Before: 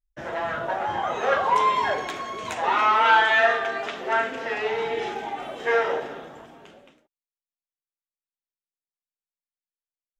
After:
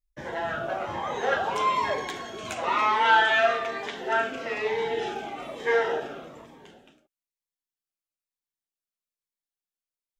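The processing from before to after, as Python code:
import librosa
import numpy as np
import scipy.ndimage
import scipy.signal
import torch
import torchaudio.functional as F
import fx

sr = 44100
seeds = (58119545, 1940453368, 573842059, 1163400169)

y = fx.notch_cascade(x, sr, direction='falling', hz=1.1)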